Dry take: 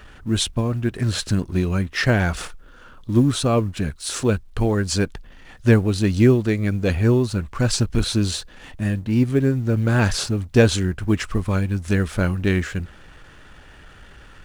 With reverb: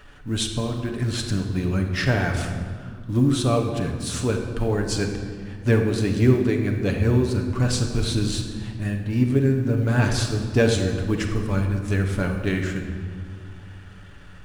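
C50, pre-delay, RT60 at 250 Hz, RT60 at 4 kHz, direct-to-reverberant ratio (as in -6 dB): 5.5 dB, 7 ms, 3.2 s, 1.3 s, 2.0 dB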